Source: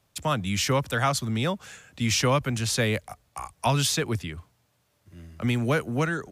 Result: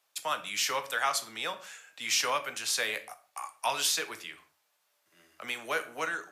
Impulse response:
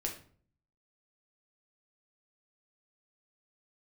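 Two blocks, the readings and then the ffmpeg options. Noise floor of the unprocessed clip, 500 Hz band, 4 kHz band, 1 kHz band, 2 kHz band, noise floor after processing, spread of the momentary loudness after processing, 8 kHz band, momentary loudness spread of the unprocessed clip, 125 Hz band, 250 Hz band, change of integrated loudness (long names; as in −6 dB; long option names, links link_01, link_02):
−70 dBFS, −9.5 dB, −2.0 dB, −3.5 dB, −2.0 dB, −75 dBFS, 15 LU, −2.0 dB, 15 LU, −32.5 dB, −22.0 dB, −5.0 dB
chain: -filter_complex "[0:a]highpass=800,asplit=2[link_01][link_02];[link_02]equalizer=frequency=12000:width_type=o:width=0.24:gain=7[link_03];[1:a]atrim=start_sample=2205,afade=type=out:start_time=0.24:duration=0.01,atrim=end_sample=11025[link_04];[link_03][link_04]afir=irnorm=-1:irlink=0,volume=-1.5dB[link_05];[link_01][link_05]amix=inputs=2:normalize=0,volume=-7dB"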